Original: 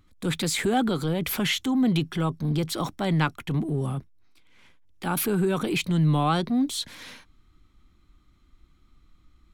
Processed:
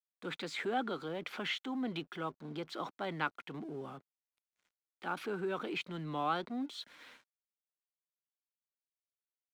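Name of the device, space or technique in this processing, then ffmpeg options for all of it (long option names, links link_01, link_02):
pocket radio on a weak battery: -af "highpass=340,lowpass=3400,aeval=exprs='sgn(val(0))*max(abs(val(0))-0.00178,0)':channel_layout=same,equalizer=frequency=1400:width_type=o:width=0.22:gain=4.5,volume=-8.5dB"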